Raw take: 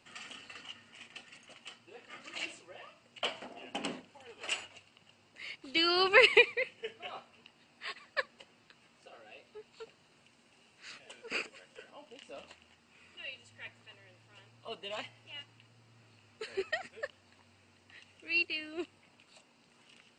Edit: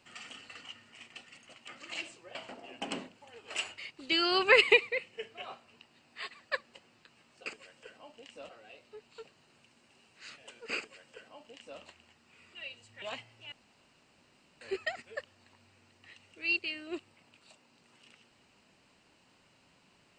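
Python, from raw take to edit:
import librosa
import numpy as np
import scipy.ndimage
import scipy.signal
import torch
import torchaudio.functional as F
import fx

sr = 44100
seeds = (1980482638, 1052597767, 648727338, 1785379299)

y = fx.edit(x, sr, fx.cut(start_s=1.68, length_s=0.44),
    fx.cut(start_s=2.79, length_s=0.49),
    fx.cut(start_s=4.71, length_s=0.72),
    fx.duplicate(start_s=11.39, length_s=1.03, to_s=9.11),
    fx.cut(start_s=13.64, length_s=1.24),
    fx.room_tone_fill(start_s=15.38, length_s=1.09), tone=tone)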